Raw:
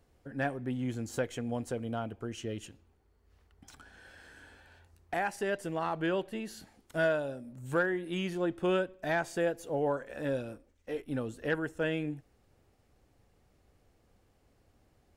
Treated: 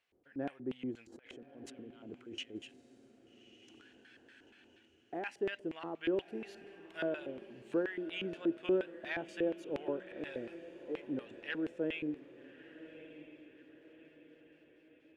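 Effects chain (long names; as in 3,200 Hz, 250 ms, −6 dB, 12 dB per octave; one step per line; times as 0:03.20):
0:01.12–0:02.55: compressor whose output falls as the input rises −45 dBFS, ratio −1
auto-filter band-pass square 4.2 Hz 350–2,600 Hz
feedback delay with all-pass diffusion 1,201 ms, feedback 46%, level −15 dB
level +2 dB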